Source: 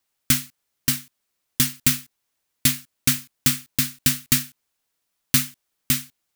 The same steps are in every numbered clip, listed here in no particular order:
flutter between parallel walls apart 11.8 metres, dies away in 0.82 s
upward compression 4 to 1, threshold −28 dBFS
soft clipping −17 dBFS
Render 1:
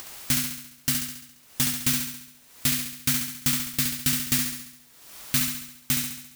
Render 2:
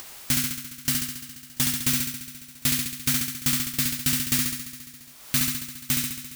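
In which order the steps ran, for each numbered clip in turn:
soft clipping, then upward compression, then flutter between parallel walls
flutter between parallel walls, then soft clipping, then upward compression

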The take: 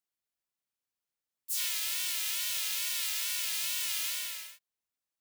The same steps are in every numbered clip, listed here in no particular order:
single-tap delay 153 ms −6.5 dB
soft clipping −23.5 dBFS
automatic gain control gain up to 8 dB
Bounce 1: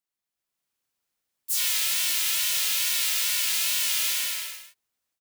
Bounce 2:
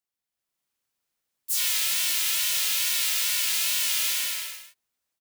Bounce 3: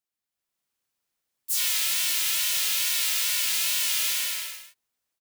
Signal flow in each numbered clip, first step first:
soft clipping, then automatic gain control, then single-tap delay
soft clipping, then single-tap delay, then automatic gain control
single-tap delay, then soft clipping, then automatic gain control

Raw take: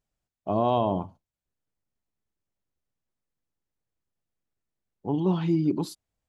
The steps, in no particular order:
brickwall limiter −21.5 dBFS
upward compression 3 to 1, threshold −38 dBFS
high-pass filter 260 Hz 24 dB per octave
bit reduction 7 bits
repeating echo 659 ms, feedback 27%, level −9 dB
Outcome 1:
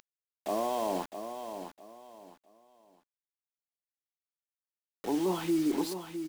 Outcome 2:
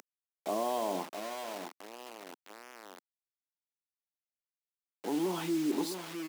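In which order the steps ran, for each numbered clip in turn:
upward compression, then high-pass filter, then brickwall limiter, then bit reduction, then repeating echo
brickwall limiter, then repeating echo, then upward compression, then bit reduction, then high-pass filter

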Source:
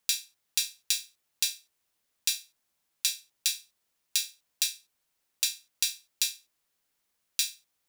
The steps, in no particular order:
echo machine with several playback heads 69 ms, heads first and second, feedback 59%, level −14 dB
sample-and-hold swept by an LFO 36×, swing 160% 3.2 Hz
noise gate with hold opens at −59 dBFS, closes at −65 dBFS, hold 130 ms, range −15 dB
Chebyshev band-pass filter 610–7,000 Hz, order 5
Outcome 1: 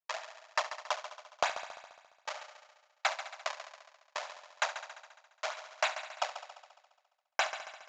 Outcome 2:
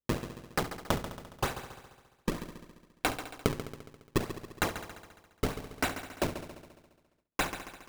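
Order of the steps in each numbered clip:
sample-and-hold swept by an LFO, then Chebyshev band-pass filter, then noise gate with hold, then echo machine with several playback heads
Chebyshev band-pass filter, then sample-and-hold swept by an LFO, then echo machine with several playback heads, then noise gate with hold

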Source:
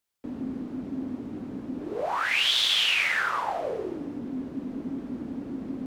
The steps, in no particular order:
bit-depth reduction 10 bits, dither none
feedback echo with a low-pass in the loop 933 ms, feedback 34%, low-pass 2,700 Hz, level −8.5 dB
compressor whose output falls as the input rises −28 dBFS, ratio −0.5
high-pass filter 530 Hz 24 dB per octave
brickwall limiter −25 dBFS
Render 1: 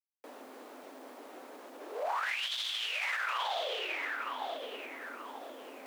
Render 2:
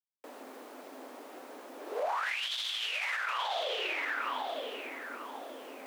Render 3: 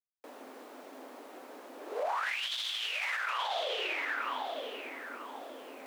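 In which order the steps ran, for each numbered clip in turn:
feedback echo with a low-pass in the loop, then compressor whose output falls as the input rises, then brickwall limiter, then bit-depth reduction, then high-pass filter
feedback echo with a low-pass in the loop, then bit-depth reduction, then high-pass filter, then compressor whose output falls as the input rises, then brickwall limiter
feedback echo with a low-pass in the loop, then compressor whose output falls as the input rises, then bit-depth reduction, then high-pass filter, then brickwall limiter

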